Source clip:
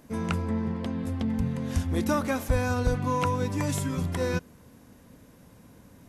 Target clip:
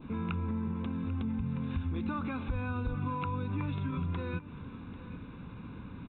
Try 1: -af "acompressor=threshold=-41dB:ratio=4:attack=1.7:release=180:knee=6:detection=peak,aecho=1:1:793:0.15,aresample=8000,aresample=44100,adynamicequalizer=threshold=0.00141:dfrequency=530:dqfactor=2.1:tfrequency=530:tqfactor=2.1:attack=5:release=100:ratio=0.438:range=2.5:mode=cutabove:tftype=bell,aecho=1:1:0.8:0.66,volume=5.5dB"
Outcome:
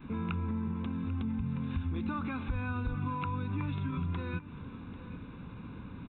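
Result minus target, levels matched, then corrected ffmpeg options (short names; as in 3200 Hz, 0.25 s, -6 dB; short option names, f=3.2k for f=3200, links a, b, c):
500 Hz band -2.5 dB
-af "acompressor=threshold=-41dB:ratio=4:attack=1.7:release=180:knee=6:detection=peak,aecho=1:1:793:0.15,aresample=8000,aresample=44100,adynamicequalizer=threshold=0.00141:dfrequency=1800:dqfactor=2.1:tfrequency=1800:tqfactor=2.1:attack=5:release=100:ratio=0.438:range=2.5:mode=cutabove:tftype=bell,aecho=1:1:0.8:0.66,volume=5.5dB"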